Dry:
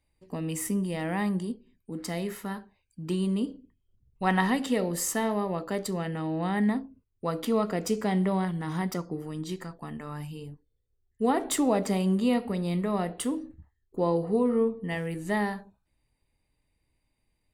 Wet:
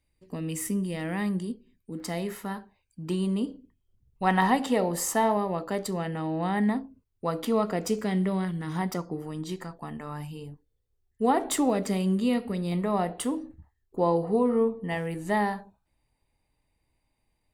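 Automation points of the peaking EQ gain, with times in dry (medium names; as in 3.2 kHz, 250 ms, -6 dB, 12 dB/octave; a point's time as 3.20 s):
peaking EQ 820 Hz 0.91 oct
-5 dB
from 2.00 s +3 dB
from 4.42 s +9.5 dB
from 5.37 s +3 dB
from 7.99 s -6 dB
from 8.76 s +4 dB
from 11.70 s -5 dB
from 12.72 s +5.5 dB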